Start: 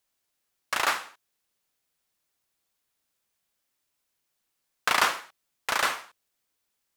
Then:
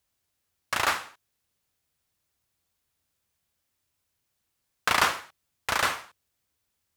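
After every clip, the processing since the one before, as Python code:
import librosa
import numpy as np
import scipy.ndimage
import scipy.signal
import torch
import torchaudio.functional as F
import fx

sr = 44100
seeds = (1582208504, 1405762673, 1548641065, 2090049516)

y = fx.peak_eq(x, sr, hz=81.0, db=14.5, octaves=1.7)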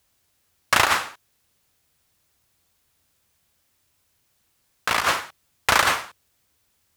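y = fx.over_compress(x, sr, threshold_db=-26.0, ratio=-0.5)
y = y * 10.0 ** (8.0 / 20.0)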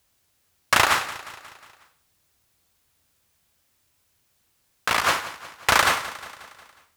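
y = fx.echo_feedback(x, sr, ms=180, feedback_pct=56, wet_db=-16.0)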